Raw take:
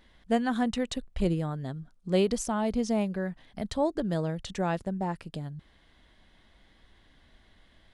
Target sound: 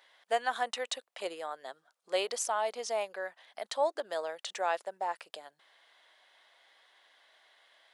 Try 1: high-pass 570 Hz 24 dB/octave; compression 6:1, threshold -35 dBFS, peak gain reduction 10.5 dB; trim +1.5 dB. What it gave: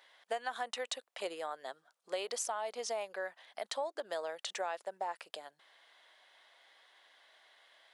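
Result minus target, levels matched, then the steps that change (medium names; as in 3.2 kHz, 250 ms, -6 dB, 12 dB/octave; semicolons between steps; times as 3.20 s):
compression: peak gain reduction +10.5 dB
remove: compression 6:1, threshold -35 dBFS, peak gain reduction 10.5 dB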